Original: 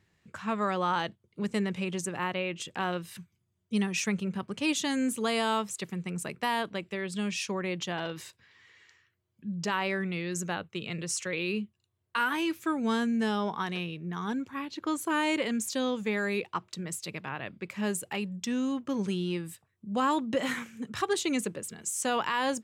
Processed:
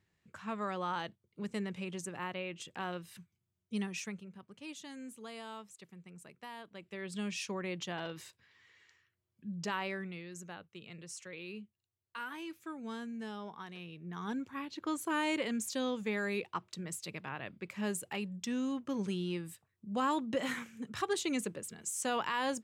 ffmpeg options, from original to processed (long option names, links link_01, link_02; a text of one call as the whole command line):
ffmpeg -i in.wav -af "volume=13dB,afade=type=out:start_time=3.85:duration=0.41:silence=0.316228,afade=type=in:start_time=6.7:duration=0.44:silence=0.251189,afade=type=out:start_time=9.71:duration=0.59:silence=0.398107,afade=type=in:start_time=13.77:duration=0.59:silence=0.354813" out.wav